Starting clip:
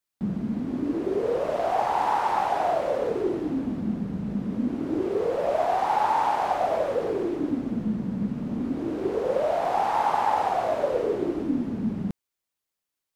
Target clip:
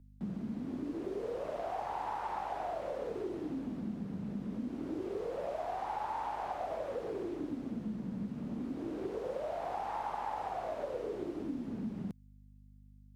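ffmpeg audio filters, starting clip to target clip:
ffmpeg -i in.wav -filter_complex "[0:a]aeval=exprs='val(0)+0.00447*(sin(2*PI*50*n/s)+sin(2*PI*2*50*n/s)/2+sin(2*PI*3*50*n/s)/3+sin(2*PI*4*50*n/s)/4+sin(2*PI*5*50*n/s)/5)':channel_layout=same,acrossover=split=94|2900[link_01][link_02][link_03];[link_01]acompressor=threshold=-51dB:ratio=4[link_04];[link_02]acompressor=threshold=-28dB:ratio=4[link_05];[link_03]acompressor=threshold=-56dB:ratio=4[link_06];[link_04][link_05][link_06]amix=inputs=3:normalize=0,volume=-7.5dB" out.wav

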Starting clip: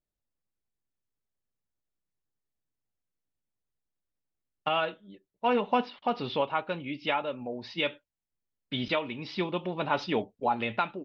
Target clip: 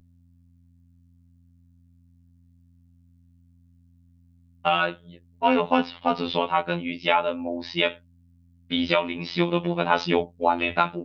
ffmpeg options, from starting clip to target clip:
ffmpeg -i in.wav -af "aeval=exprs='val(0)+0.001*(sin(2*PI*50*n/s)+sin(2*PI*2*50*n/s)/2+sin(2*PI*3*50*n/s)/3+sin(2*PI*4*50*n/s)/4+sin(2*PI*5*50*n/s)/5)':channel_layout=same,acontrast=22,afftfilt=real='hypot(re,im)*cos(PI*b)':imag='0':win_size=2048:overlap=0.75,volume=5.5dB" out.wav

